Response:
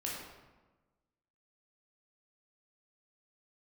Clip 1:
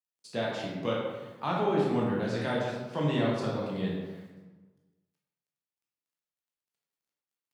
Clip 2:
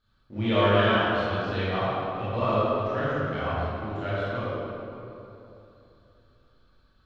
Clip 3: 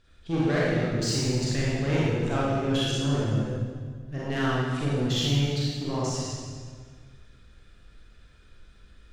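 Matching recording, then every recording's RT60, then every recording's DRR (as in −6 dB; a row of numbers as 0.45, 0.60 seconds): 1; 1.2, 3.0, 1.8 seconds; −4.5, −12.0, −7.5 decibels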